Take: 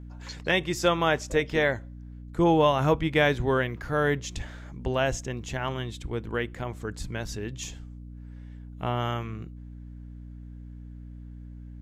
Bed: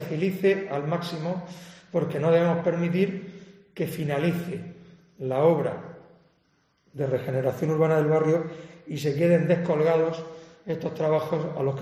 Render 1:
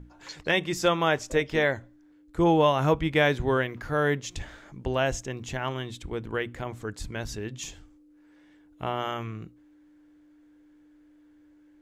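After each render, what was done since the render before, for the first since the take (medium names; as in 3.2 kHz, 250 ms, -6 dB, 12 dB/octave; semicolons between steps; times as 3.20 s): hum notches 60/120/180/240 Hz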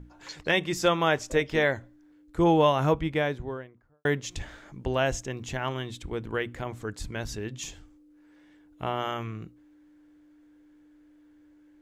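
2.64–4.05 s: studio fade out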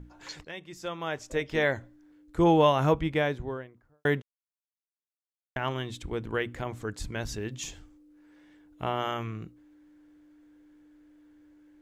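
0.45–1.78 s: fade in quadratic, from -17 dB; 4.22–5.56 s: mute; 7.29–8.85 s: short-mantissa float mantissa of 6-bit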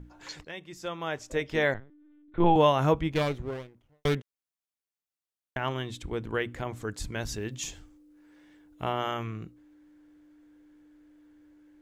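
1.74–2.56 s: LPC vocoder at 8 kHz pitch kept; 3.11–4.15 s: comb filter that takes the minimum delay 0.31 ms; 6.76–8.93 s: treble shelf 5.1 kHz +3.5 dB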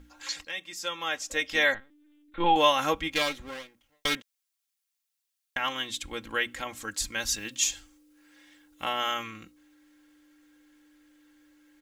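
tilt shelf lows -9.5 dB, about 1.1 kHz; comb 3.7 ms, depth 73%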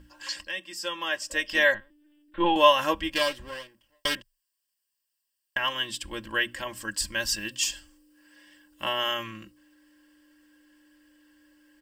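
rippled EQ curve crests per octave 1.3, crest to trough 11 dB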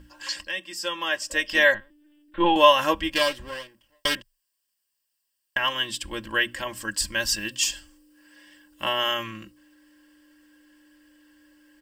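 trim +3 dB; peak limiter -3 dBFS, peak gain reduction 1 dB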